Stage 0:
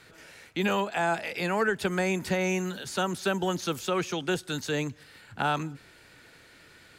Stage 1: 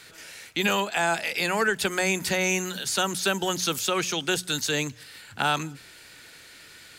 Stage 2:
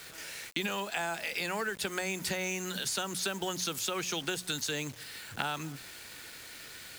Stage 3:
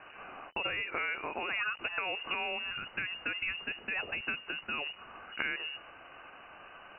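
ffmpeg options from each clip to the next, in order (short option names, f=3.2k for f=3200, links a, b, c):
-af "highshelf=f=2.2k:g=12,bandreject=f=60:t=h:w=6,bandreject=f=120:t=h:w=6,bandreject=f=180:t=h:w=6"
-af "acompressor=threshold=-30dB:ratio=16,acrusher=bits=7:mix=0:aa=0.000001"
-af "lowpass=f=2.6k:t=q:w=0.5098,lowpass=f=2.6k:t=q:w=0.6013,lowpass=f=2.6k:t=q:w=0.9,lowpass=f=2.6k:t=q:w=2.563,afreqshift=-3000"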